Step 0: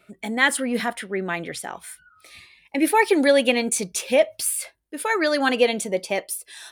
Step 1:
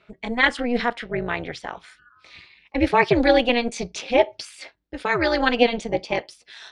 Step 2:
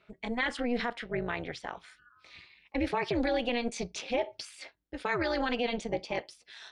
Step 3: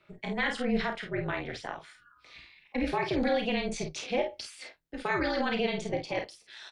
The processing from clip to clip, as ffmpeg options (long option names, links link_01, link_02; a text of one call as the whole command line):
ffmpeg -i in.wav -af "lowpass=frequency=5300:width=0.5412,lowpass=frequency=5300:width=1.3066,tremolo=f=240:d=0.857,volume=4dB" out.wav
ffmpeg -i in.wav -af "alimiter=limit=-13dB:level=0:latency=1:release=41,volume=-6.5dB" out.wav
ffmpeg -i in.wav -filter_complex "[0:a]afreqshift=-25,asplit=2[link_01][link_02];[link_02]aecho=0:1:32|50:0.376|0.447[link_03];[link_01][link_03]amix=inputs=2:normalize=0" out.wav